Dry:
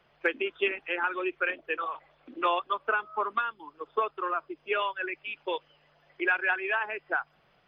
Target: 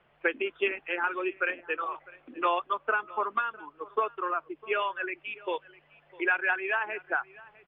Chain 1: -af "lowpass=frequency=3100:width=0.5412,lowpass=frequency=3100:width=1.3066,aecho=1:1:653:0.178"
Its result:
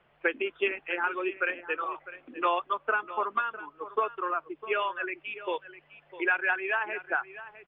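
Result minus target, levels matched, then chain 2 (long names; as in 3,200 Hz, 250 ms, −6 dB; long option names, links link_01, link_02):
echo-to-direct +6.5 dB
-af "lowpass=frequency=3100:width=0.5412,lowpass=frequency=3100:width=1.3066,aecho=1:1:653:0.0841"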